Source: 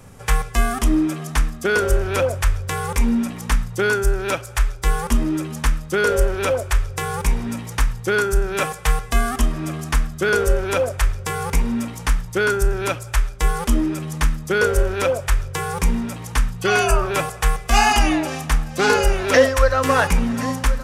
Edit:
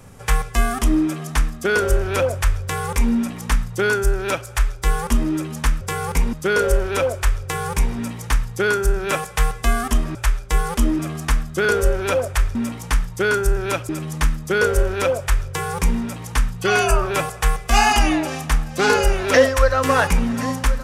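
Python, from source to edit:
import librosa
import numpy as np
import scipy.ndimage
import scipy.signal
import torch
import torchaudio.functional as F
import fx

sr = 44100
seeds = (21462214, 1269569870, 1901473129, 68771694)

y = fx.edit(x, sr, fx.move(start_s=11.19, length_s=0.52, to_s=5.81),
    fx.move(start_s=13.05, length_s=0.84, to_s=9.63), tone=tone)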